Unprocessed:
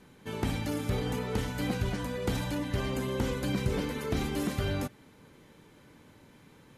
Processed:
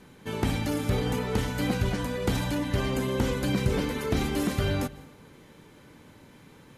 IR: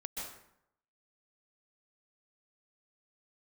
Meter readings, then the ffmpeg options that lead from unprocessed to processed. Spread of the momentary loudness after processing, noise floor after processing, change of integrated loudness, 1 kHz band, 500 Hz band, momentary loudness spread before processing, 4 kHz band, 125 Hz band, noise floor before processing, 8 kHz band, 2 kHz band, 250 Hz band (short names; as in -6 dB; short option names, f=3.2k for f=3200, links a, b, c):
3 LU, -54 dBFS, +4.0 dB, +4.0 dB, +4.0 dB, 2 LU, +4.0 dB, +4.0 dB, -58 dBFS, +4.0 dB, +4.0 dB, +4.0 dB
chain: -filter_complex "[0:a]asplit=2[a][b];[1:a]atrim=start_sample=2205,asetrate=38367,aresample=44100[c];[b][c]afir=irnorm=-1:irlink=0,volume=-18dB[d];[a][d]amix=inputs=2:normalize=0,volume=3.5dB"